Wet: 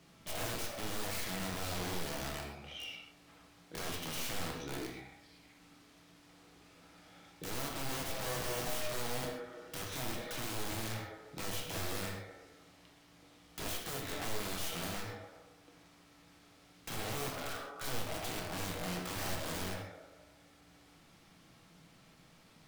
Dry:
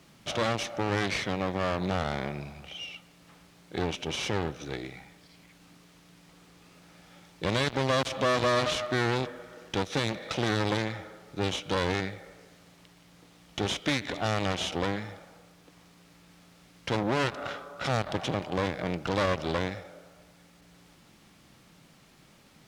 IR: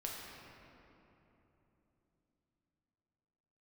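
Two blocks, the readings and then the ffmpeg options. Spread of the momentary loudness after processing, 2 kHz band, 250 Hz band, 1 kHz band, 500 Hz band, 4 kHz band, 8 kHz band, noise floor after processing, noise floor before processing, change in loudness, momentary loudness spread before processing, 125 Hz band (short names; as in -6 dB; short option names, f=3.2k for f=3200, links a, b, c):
17 LU, -9.5 dB, -11.5 dB, -11.0 dB, -12.5 dB, -8.0 dB, 0.0 dB, -62 dBFS, -58 dBFS, -9.5 dB, 13 LU, -11.0 dB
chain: -filter_complex "[0:a]aeval=exprs='(mod(29.9*val(0)+1,2)-1)/29.9':c=same[a];[1:a]atrim=start_sample=2205,atrim=end_sample=6615[b];[a][b]afir=irnorm=-1:irlink=0,volume=-2dB"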